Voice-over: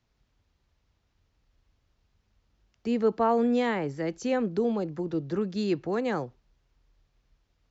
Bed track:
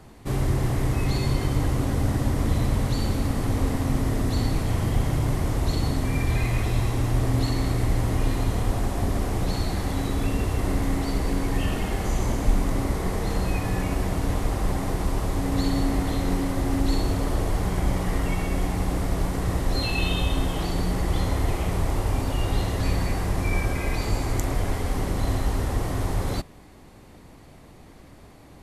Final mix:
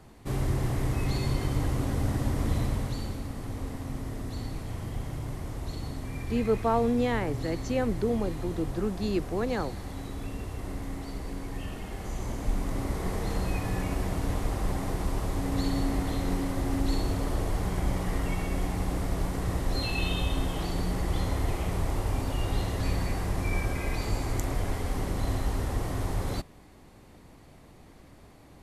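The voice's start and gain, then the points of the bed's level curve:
3.45 s, -1.5 dB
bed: 2.59 s -4.5 dB
3.26 s -11.5 dB
11.83 s -11.5 dB
13.10 s -4.5 dB

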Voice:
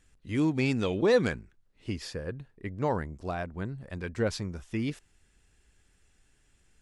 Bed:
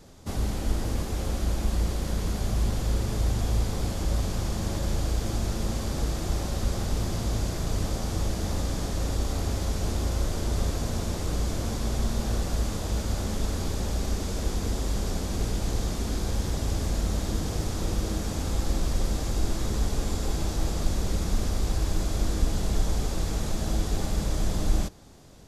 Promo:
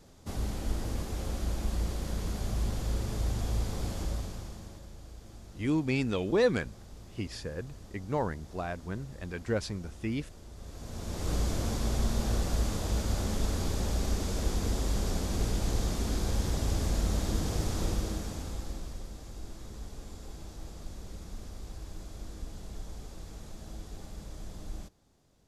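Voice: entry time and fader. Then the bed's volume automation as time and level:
5.30 s, -2.0 dB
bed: 4.01 s -5.5 dB
4.91 s -21 dB
10.55 s -21 dB
11.31 s -2 dB
17.84 s -2 dB
19.10 s -16.5 dB

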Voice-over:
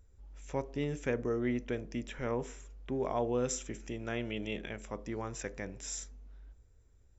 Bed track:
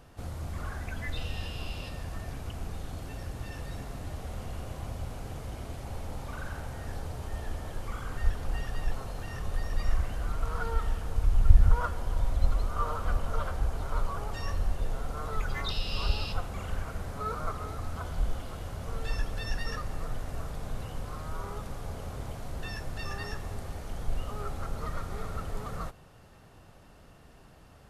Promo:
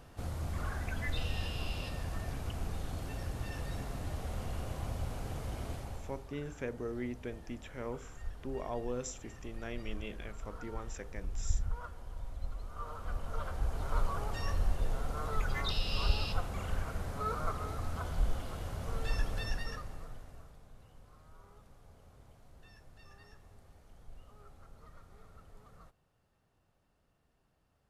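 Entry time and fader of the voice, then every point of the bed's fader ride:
5.55 s, -6.0 dB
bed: 5.73 s -0.5 dB
6.32 s -14.5 dB
12.57 s -14.5 dB
13.95 s -1.5 dB
19.39 s -1.5 dB
20.67 s -20.5 dB

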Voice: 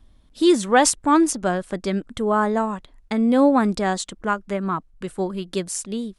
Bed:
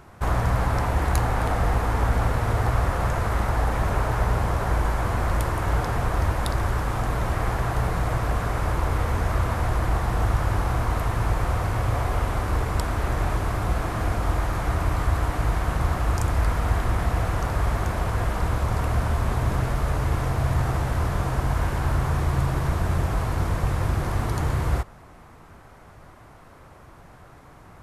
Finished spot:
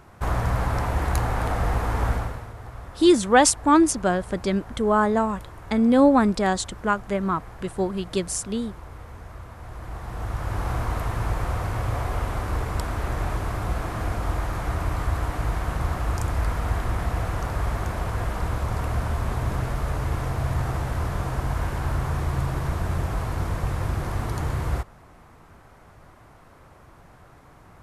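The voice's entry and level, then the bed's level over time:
2.60 s, 0.0 dB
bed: 2.11 s -1.5 dB
2.53 s -17 dB
9.55 s -17 dB
10.69 s -2.5 dB

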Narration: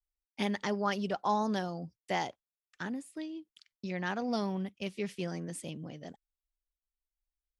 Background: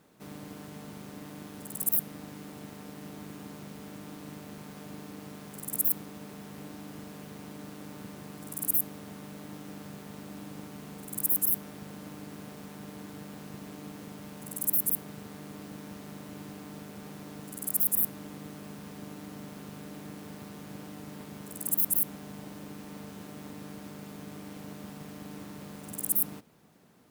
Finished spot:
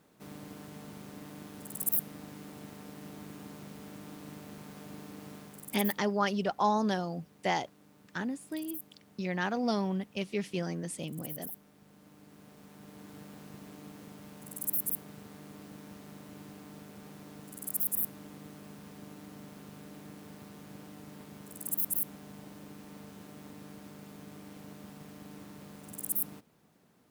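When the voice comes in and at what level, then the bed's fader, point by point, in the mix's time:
5.35 s, +2.5 dB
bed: 5.36 s -2.5 dB
6.16 s -16.5 dB
11.75 s -16.5 dB
13.17 s -5 dB

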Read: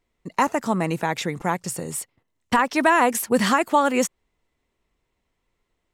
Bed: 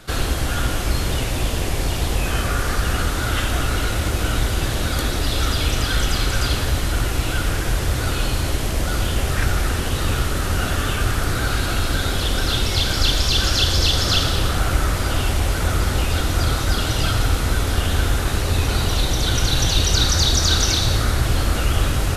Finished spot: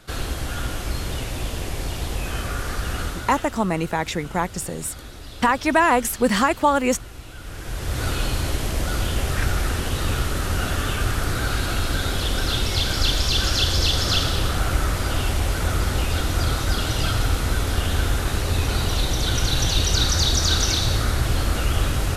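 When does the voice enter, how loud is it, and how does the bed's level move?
2.90 s, +0.5 dB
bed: 3.06 s -6 dB
3.57 s -17.5 dB
7.36 s -17.5 dB
8.03 s -2.5 dB

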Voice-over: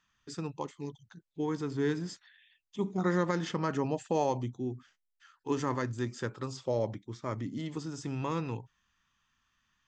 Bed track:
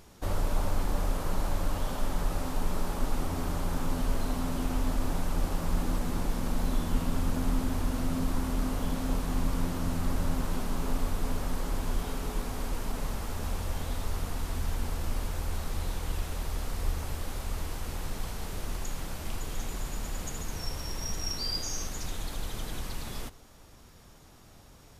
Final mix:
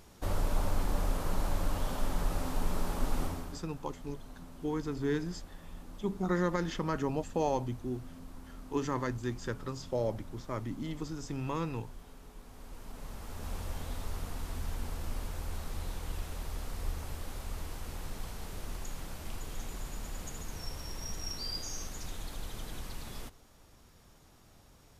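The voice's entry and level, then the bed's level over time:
3.25 s, -1.5 dB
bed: 3.25 s -2 dB
3.66 s -18.5 dB
12.38 s -18.5 dB
13.56 s -5.5 dB

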